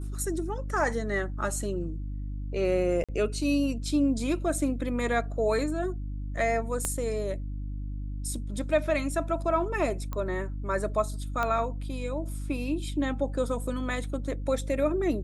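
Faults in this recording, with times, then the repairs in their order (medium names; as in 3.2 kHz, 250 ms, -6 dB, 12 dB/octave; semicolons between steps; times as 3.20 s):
hum 50 Hz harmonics 6 -34 dBFS
3.04–3.09 s: dropout 46 ms
6.85 s: pop -14 dBFS
10.13 s: pop -21 dBFS
11.43 s: pop -16 dBFS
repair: de-click; de-hum 50 Hz, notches 6; interpolate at 3.04 s, 46 ms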